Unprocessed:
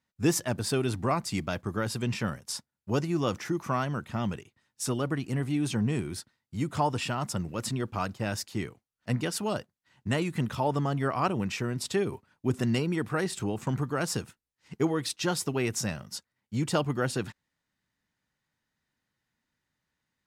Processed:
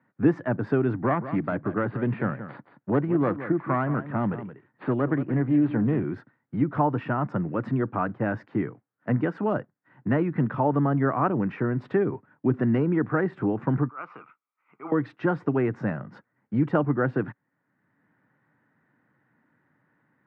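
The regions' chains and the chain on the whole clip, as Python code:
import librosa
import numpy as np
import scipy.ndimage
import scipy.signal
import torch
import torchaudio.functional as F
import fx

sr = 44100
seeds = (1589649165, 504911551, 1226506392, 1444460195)

y = fx.chain(x, sr, fx.self_delay(depth_ms=0.21),
    fx.cheby1_lowpass(hz=4700.0, order=10),
    fx.echo_single(ms=174, db=-13.5), at=(1.02, 6.04))
y = fx.chain(y, sr, fx.double_bandpass(hz=1700.0, octaves=0.9),
    fx.transient(attack_db=-11, sustain_db=5), at=(13.88, 14.92))
y = scipy.signal.sosfilt(scipy.signal.cheby1(3, 1.0, [120.0, 1700.0], 'bandpass', fs=sr, output='sos'), y)
y = fx.peak_eq(y, sr, hz=290.0, db=6.0, octaves=0.31)
y = fx.band_squash(y, sr, depth_pct=40)
y = y * librosa.db_to_amplitude(4.5)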